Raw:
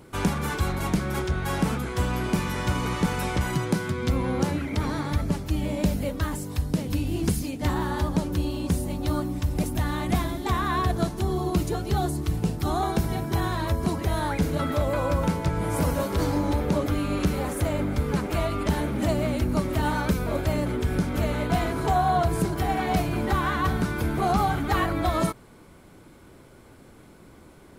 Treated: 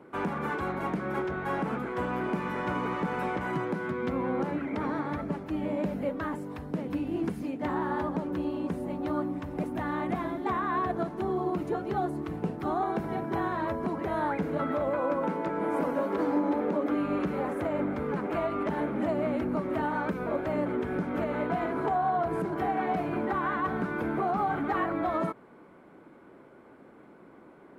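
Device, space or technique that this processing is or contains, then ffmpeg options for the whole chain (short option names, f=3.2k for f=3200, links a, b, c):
DJ mixer with the lows and highs turned down: -filter_complex "[0:a]acrossover=split=180 2200:gain=0.0794 1 0.0794[a][b][c];[a][b][c]amix=inputs=3:normalize=0,alimiter=limit=-20dB:level=0:latency=1:release=121,asettb=1/sr,asplit=3[d][e][f];[d]atrim=end=14.994[g];[e]atrim=start=14.99:end=17,asetpts=PTS-STARTPTS,afade=t=in:d=0.004:c=qsin,afade=t=out:st=2.006:d=0.004:c=qsin,lowshelf=f=170:t=q:w=1.5:g=-9.5[h];[f]atrim=start=16.996[i];[g][h]acrossfade=d=0.004:c1=hsin:c2=qsin[j];[j][i]acrossfade=d=0.004:c1=qsin:c2=hsin"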